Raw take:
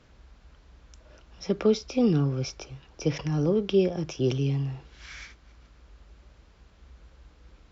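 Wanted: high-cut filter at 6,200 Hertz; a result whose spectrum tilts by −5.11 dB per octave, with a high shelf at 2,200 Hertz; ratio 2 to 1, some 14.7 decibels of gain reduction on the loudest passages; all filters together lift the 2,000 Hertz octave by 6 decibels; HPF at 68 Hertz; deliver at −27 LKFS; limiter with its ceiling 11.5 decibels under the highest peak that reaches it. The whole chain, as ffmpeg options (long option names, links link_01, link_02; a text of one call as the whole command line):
ffmpeg -i in.wav -af "highpass=68,lowpass=6200,equalizer=frequency=2000:width_type=o:gain=4,highshelf=frequency=2200:gain=6,acompressor=threshold=-45dB:ratio=2,volume=16dB,alimiter=limit=-17dB:level=0:latency=1" out.wav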